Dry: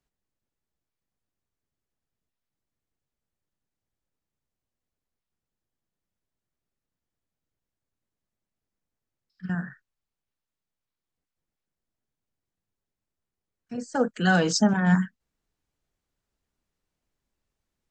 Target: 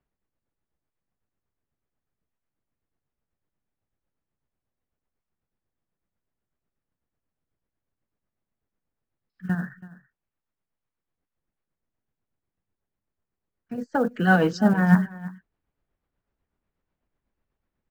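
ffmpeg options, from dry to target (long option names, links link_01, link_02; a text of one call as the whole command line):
ffmpeg -i in.wav -filter_complex "[0:a]lowpass=2100,acrusher=bits=9:mode=log:mix=0:aa=0.000001,tremolo=f=8.1:d=0.51,asplit=2[link_01][link_02];[link_02]aecho=0:1:329:0.119[link_03];[link_01][link_03]amix=inputs=2:normalize=0,volume=5dB" out.wav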